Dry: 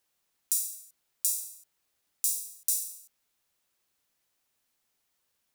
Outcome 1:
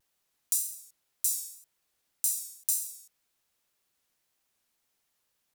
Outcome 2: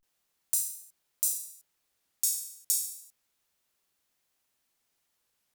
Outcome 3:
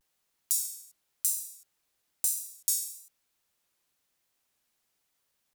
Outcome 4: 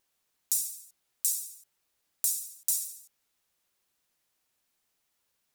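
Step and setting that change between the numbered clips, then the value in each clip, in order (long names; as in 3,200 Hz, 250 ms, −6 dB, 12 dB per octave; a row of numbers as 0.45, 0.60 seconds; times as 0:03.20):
pitch vibrato, speed: 1.9, 0.31, 1, 13 Hertz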